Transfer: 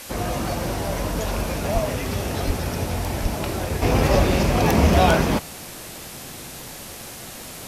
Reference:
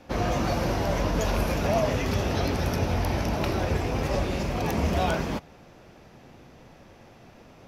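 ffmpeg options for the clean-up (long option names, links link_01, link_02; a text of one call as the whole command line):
ffmpeg -i in.wav -filter_complex "[0:a]adeclick=threshold=4,asplit=3[link_01][link_02][link_03];[link_01]afade=type=out:start_time=1.73:duration=0.02[link_04];[link_02]highpass=frequency=140:width=0.5412,highpass=frequency=140:width=1.3066,afade=type=in:start_time=1.73:duration=0.02,afade=type=out:start_time=1.85:duration=0.02[link_05];[link_03]afade=type=in:start_time=1.85:duration=0.02[link_06];[link_04][link_05][link_06]amix=inputs=3:normalize=0,asplit=3[link_07][link_08][link_09];[link_07]afade=type=out:start_time=2.46:duration=0.02[link_10];[link_08]highpass=frequency=140:width=0.5412,highpass=frequency=140:width=1.3066,afade=type=in:start_time=2.46:duration=0.02,afade=type=out:start_time=2.58:duration=0.02[link_11];[link_09]afade=type=in:start_time=2.58:duration=0.02[link_12];[link_10][link_11][link_12]amix=inputs=3:normalize=0,asplit=3[link_13][link_14][link_15];[link_13]afade=type=out:start_time=3.22:duration=0.02[link_16];[link_14]highpass=frequency=140:width=0.5412,highpass=frequency=140:width=1.3066,afade=type=in:start_time=3.22:duration=0.02,afade=type=out:start_time=3.34:duration=0.02[link_17];[link_15]afade=type=in:start_time=3.34:duration=0.02[link_18];[link_16][link_17][link_18]amix=inputs=3:normalize=0,afwtdn=0.014,asetnsamples=nb_out_samples=441:pad=0,asendcmd='3.82 volume volume -9dB',volume=0dB" out.wav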